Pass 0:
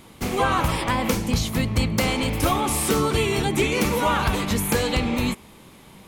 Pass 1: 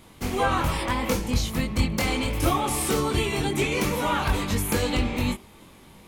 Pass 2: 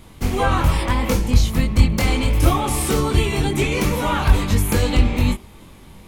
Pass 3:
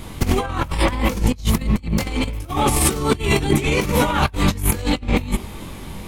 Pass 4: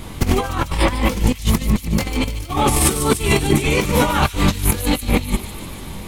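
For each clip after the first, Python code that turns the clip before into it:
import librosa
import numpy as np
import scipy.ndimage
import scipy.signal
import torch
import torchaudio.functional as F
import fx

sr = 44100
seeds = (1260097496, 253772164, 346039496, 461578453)

y1 = fx.chorus_voices(x, sr, voices=6, hz=0.74, base_ms=22, depth_ms=2.0, mix_pct=40)
y2 = fx.low_shelf(y1, sr, hz=110.0, db=11.0)
y2 = y2 * librosa.db_to_amplitude(3.0)
y3 = fx.over_compress(y2, sr, threshold_db=-23.0, ratio=-0.5)
y3 = y3 * librosa.db_to_amplitude(4.0)
y4 = fx.echo_wet_highpass(y3, sr, ms=148, feedback_pct=73, hz=3600.0, wet_db=-8.0)
y4 = y4 * librosa.db_to_amplitude(1.5)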